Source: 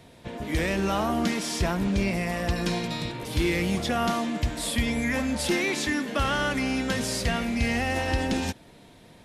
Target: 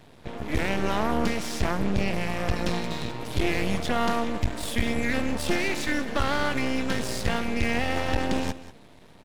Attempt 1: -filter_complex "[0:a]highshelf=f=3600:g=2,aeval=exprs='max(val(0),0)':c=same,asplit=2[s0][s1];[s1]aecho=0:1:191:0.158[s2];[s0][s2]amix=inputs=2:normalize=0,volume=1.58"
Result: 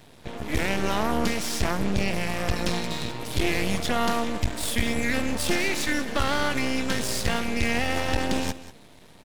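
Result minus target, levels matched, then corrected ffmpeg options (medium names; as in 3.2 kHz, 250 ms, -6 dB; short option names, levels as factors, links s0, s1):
8 kHz band +5.0 dB
-filter_complex "[0:a]highshelf=f=3600:g=-6,aeval=exprs='max(val(0),0)':c=same,asplit=2[s0][s1];[s1]aecho=0:1:191:0.158[s2];[s0][s2]amix=inputs=2:normalize=0,volume=1.58"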